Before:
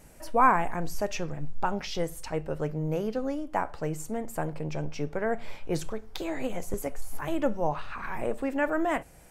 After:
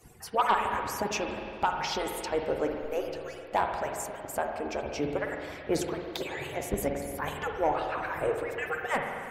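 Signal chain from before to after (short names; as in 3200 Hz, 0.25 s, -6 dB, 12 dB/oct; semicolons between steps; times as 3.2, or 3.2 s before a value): median-filter separation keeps percussive; sine folder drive 4 dB, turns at -13 dBFS; spring tank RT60 2.3 s, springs 46/53 ms, chirp 35 ms, DRR 2.5 dB; gain -4.5 dB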